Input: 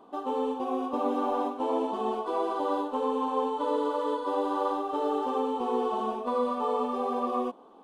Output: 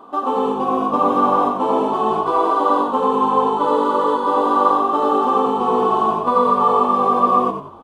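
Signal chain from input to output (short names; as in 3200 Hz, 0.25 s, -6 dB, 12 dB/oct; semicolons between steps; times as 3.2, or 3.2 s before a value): bell 1200 Hz +9.5 dB 0.53 oct; on a send: frequency-shifting echo 92 ms, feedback 33%, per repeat -51 Hz, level -7.5 dB; on the sum: gain +8.5 dB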